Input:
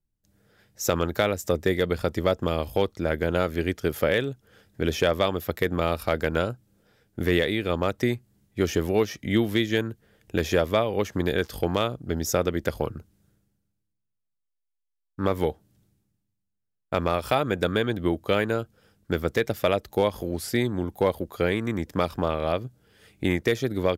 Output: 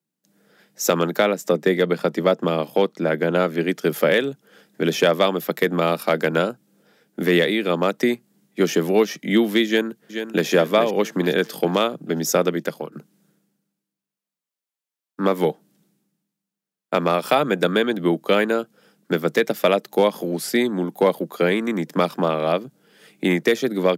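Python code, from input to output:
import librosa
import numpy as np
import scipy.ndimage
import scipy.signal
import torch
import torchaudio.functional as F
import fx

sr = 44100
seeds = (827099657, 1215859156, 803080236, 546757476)

y = fx.high_shelf(x, sr, hz=4500.0, db=-6.5, at=(1.17, 3.69))
y = fx.echo_throw(y, sr, start_s=9.66, length_s=0.81, ms=430, feedback_pct=45, wet_db=-8.5)
y = fx.edit(y, sr, fx.fade_out_to(start_s=12.46, length_s=0.46, floor_db=-12.5), tone=tone)
y = scipy.signal.sosfilt(scipy.signal.butter(12, 150.0, 'highpass', fs=sr, output='sos'), y)
y = y * 10.0 ** (5.5 / 20.0)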